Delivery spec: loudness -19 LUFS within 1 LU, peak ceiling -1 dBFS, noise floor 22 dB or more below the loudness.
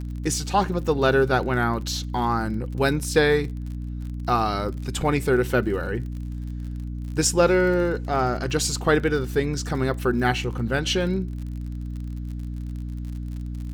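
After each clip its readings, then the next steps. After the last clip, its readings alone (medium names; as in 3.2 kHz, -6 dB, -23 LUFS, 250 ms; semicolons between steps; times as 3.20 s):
tick rate 47 per s; hum 60 Hz; highest harmonic 300 Hz; hum level -28 dBFS; loudness -24.5 LUFS; peak level -6.5 dBFS; loudness target -19.0 LUFS
-> de-click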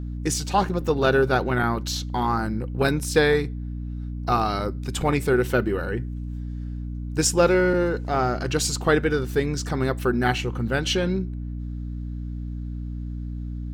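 tick rate 1.0 per s; hum 60 Hz; highest harmonic 300 Hz; hum level -28 dBFS
-> hum notches 60/120/180/240/300 Hz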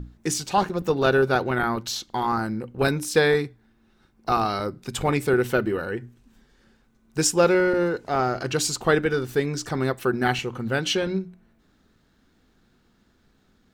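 hum not found; loudness -24.0 LUFS; peak level -7.0 dBFS; loudness target -19.0 LUFS
-> trim +5 dB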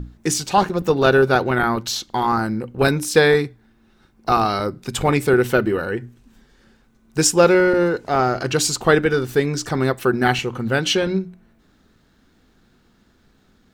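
loudness -19.0 LUFS; peak level -2.0 dBFS; noise floor -58 dBFS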